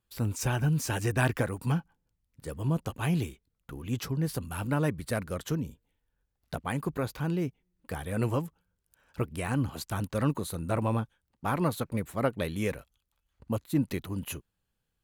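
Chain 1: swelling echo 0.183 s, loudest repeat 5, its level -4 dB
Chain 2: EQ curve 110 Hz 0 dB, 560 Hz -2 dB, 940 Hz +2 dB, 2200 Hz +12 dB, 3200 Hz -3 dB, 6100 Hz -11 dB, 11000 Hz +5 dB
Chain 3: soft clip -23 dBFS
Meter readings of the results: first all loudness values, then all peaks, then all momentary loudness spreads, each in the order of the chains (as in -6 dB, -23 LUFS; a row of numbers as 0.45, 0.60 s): -26.0, -30.5, -34.0 LUFS; -11.0, -6.0, -23.0 dBFS; 3, 11, 10 LU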